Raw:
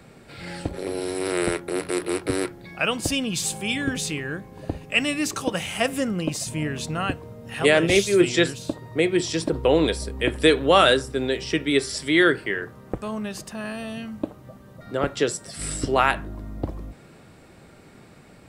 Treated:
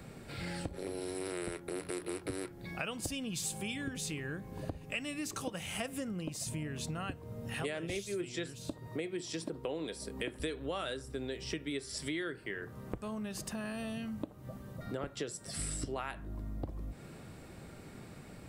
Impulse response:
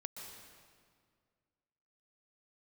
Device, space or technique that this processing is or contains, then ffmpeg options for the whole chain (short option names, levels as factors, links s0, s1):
ASMR close-microphone chain: -filter_complex "[0:a]asettb=1/sr,asplit=3[s0][s1][s2];[s0]atrim=end=8.874[s3];[s1]atrim=start=8.87:end=10.4,asetpts=PTS-STARTPTS,afade=t=in:d=0.004:c=qsin,afade=t=out:st=1.526:d=0.004:c=qsin,highpass=150[s4];[s2]atrim=start=10.396[s5];[s3][s4]acrossfade=d=0.004:c1=hsin:c2=qsin[s6];[s6][s5]acrossfade=d=0.004:c1=qsin:c2=hsin,lowshelf=f=220:g=5.5,acompressor=threshold=0.0224:ratio=6,highshelf=f=8600:g=6,volume=0.668"